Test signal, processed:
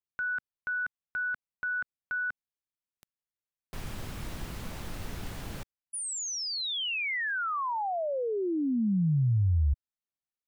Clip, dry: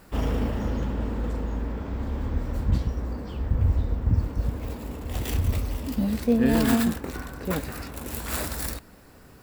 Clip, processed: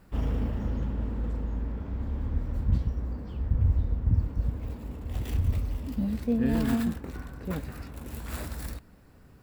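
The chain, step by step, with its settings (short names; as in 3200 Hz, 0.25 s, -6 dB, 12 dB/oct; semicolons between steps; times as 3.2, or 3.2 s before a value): tone controls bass +7 dB, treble -4 dB; gain -8.5 dB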